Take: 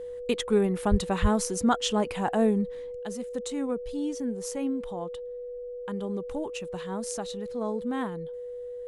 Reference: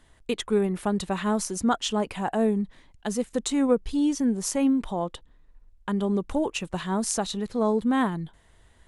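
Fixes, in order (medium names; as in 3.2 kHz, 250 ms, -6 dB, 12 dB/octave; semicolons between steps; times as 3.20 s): band-stop 490 Hz, Q 30; 0.90–1.02 s: high-pass 140 Hz 24 dB/octave; 1.21–1.33 s: high-pass 140 Hz 24 dB/octave; trim 0 dB, from 2.99 s +8 dB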